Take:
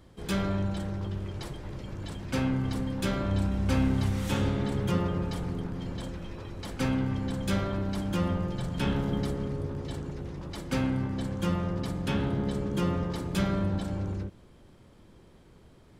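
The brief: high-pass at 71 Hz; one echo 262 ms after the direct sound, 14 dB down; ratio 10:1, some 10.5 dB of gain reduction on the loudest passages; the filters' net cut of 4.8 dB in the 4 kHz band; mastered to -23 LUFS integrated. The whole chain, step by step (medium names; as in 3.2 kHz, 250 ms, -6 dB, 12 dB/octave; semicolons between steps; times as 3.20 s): high-pass 71 Hz; peaking EQ 4 kHz -6.5 dB; compression 10:1, threshold -34 dBFS; delay 262 ms -14 dB; trim +16 dB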